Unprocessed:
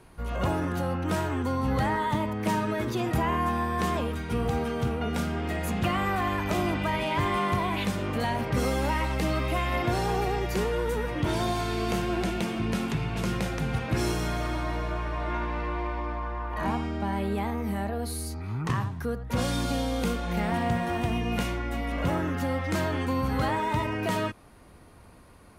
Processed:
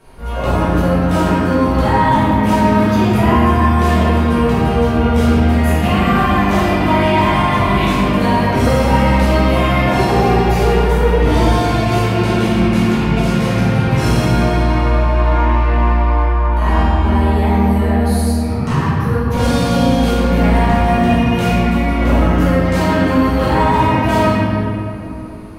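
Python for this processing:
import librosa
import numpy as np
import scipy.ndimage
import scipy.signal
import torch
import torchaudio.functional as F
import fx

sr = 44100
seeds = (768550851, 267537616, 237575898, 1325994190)

p1 = fx.room_shoebox(x, sr, seeds[0], volume_m3=120.0, walls='hard', distance_m=1.6)
p2 = np.clip(p1, -10.0 ** (-8.5 / 20.0), 10.0 ** (-8.5 / 20.0))
p3 = p1 + (p2 * 10.0 ** (-5.0 / 20.0))
y = p3 * 10.0 ** (-3.0 / 20.0)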